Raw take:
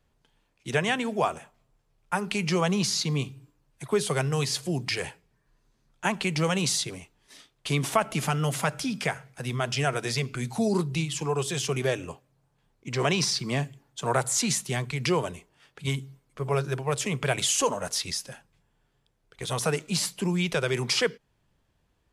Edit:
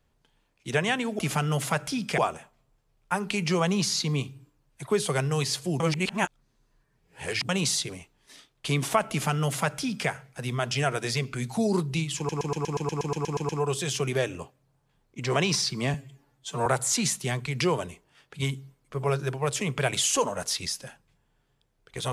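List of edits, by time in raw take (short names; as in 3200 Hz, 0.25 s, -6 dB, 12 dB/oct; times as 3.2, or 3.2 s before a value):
4.81–6.5 reverse
8.11–9.1 copy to 1.19
11.18 stutter 0.12 s, 12 plays
13.63–14.11 stretch 1.5×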